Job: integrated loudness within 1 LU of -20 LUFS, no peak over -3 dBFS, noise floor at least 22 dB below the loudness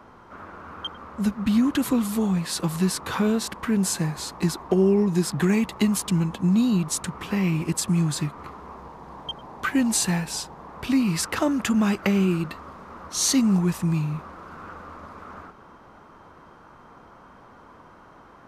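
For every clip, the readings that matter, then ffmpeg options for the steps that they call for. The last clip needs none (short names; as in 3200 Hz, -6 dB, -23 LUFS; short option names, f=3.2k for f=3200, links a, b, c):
loudness -23.5 LUFS; peak -10.0 dBFS; loudness target -20.0 LUFS
-> -af "volume=3.5dB"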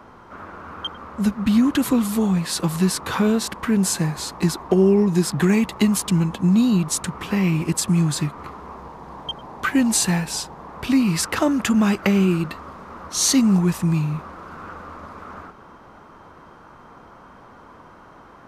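loudness -20.0 LUFS; peak -6.5 dBFS; noise floor -46 dBFS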